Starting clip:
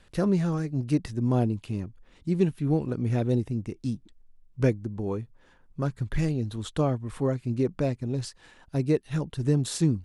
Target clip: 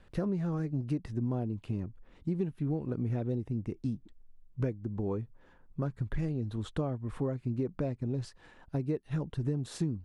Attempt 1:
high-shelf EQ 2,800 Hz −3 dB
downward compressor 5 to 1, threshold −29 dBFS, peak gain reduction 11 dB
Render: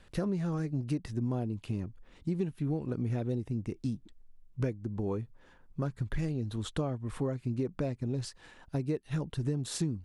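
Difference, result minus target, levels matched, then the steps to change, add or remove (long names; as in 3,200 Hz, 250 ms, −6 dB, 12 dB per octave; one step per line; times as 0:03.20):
4,000 Hz band +6.5 dB
change: high-shelf EQ 2,800 Hz −13 dB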